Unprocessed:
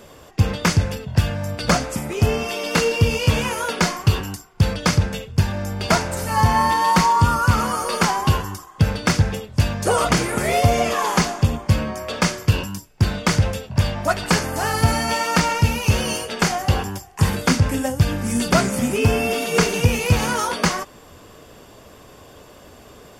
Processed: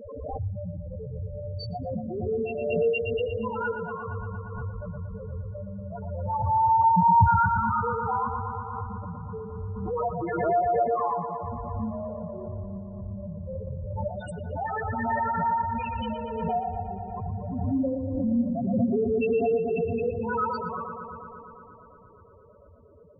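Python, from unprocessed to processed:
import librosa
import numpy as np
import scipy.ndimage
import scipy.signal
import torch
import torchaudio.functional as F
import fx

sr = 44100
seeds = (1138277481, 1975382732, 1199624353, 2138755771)

p1 = fx.hum_notches(x, sr, base_hz=50, count=8)
p2 = fx.auto_swell(p1, sr, attack_ms=166.0)
p3 = fx.level_steps(p2, sr, step_db=13)
p4 = p2 + F.gain(torch.from_numpy(p3), 2.0).numpy()
p5 = fx.spec_topn(p4, sr, count=2)
p6 = p5 + fx.echo_bbd(p5, sr, ms=117, stages=2048, feedback_pct=80, wet_db=-7.5, dry=0)
p7 = fx.pre_swell(p6, sr, db_per_s=34.0)
y = F.gain(torch.from_numpy(p7), -5.0).numpy()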